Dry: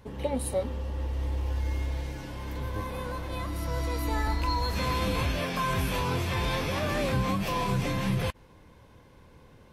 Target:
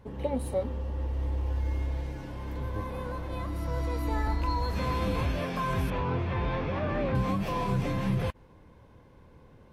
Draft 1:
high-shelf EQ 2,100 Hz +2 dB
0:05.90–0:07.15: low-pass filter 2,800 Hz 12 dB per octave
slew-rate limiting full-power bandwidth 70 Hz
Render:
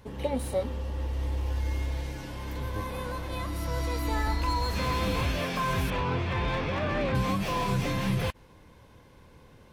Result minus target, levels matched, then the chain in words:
4,000 Hz band +6.5 dB
high-shelf EQ 2,100 Hz −9.5 dB
0:05.90–0:07.15: low-pass filter 2,800 Hz 12 dB per octave
slew-rate limiting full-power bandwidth 70 Hz

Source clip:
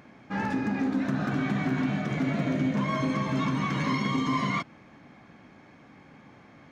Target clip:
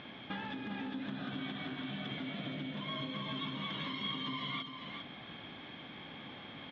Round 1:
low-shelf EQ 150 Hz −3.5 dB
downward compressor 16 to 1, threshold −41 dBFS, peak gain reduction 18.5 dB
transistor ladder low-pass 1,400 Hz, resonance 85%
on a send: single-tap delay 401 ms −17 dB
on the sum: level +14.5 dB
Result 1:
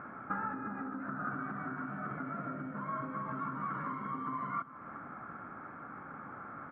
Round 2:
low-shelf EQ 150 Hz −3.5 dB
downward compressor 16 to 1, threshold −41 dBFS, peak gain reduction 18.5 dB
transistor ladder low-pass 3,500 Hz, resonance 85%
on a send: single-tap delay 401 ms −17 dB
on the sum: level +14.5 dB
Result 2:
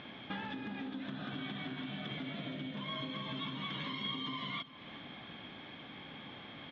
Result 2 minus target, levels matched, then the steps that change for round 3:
echo-to-direct −10.5 dB
change: single-tap delay 401 ms −6.5 dB

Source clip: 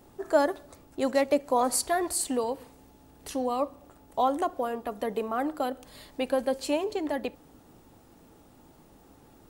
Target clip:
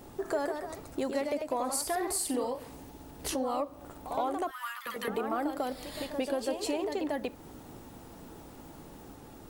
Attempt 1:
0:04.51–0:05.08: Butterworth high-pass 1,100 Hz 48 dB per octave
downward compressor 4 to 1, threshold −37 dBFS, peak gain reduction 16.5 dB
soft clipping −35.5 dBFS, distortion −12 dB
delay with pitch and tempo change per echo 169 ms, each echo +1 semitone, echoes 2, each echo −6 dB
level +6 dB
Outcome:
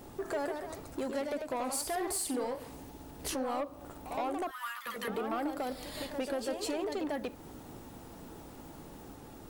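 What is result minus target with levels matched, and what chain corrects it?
soft clipping: distortion +16 dB
0:04.51–0:05.08: Butterworth high-pass 1,100 Hz 48 dB per octave
downward compressor 4 to 1, threshold −37 dBFS, peak gain reduction 16.5 dB
soft clipping −24.5 dBFS, distortion −28 dB
delay with pitch and tempo change per echo 169 ms, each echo +1 semitone, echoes 2, each echo −6 dB
level +6 dB

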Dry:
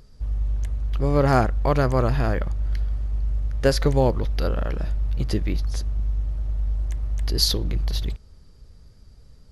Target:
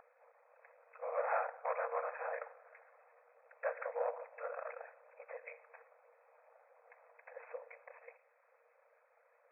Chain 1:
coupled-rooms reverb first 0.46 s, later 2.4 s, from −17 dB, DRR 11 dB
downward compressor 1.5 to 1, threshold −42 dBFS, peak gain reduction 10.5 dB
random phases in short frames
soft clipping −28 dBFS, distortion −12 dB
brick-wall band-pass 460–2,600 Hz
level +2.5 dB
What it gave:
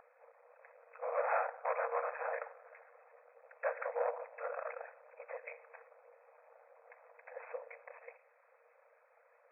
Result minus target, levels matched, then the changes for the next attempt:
downward compressor: peak gain reduction −3.5 dB
change: downward compressor 1.5 to 1, threshold −52.5 dBFS, peak gain reduction 14 dB

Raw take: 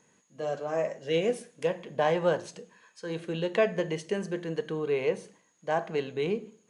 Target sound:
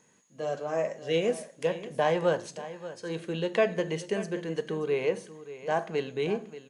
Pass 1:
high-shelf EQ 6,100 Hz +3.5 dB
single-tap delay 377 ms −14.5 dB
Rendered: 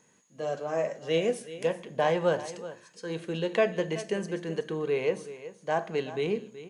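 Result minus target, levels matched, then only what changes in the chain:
echo 205 ms early
change: single-tap delay 582 ms −14.5 dB

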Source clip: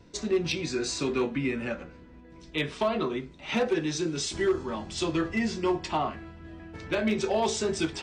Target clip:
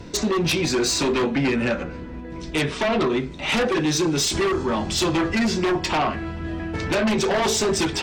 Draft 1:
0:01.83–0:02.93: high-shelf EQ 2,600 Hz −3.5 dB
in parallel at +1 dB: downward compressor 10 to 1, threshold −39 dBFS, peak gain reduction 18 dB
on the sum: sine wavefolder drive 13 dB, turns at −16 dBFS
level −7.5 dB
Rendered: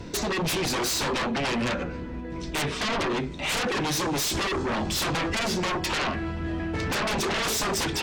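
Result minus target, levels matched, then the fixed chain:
sine wavefolder: distortion +16 dB
0:01.83–0:02.93: high-shelf EQ 2,600 Hz −3.5 dB
in parallel at +1 dB: downward compressor 10 to 1, threshold −39 dBFS, peak gain reduction 18 dB
on the sum: sine wavefolder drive 13 dB, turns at −9.5 dBFS
level −7.5 dB

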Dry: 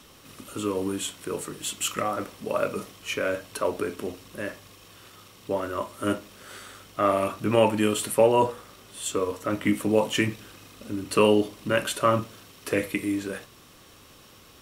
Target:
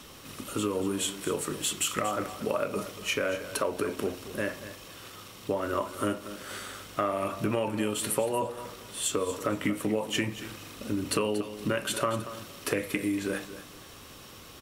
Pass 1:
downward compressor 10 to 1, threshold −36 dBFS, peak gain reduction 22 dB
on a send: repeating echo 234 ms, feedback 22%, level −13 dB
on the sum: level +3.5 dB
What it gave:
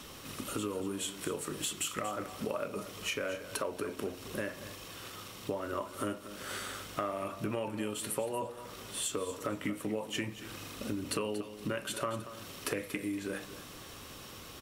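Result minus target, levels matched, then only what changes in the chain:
downward compressor: peak gain reduction +7 dB
change: downward compressor 10 to 1, threshold −28.5 dBFS, peak gain reduction 15.5 dB

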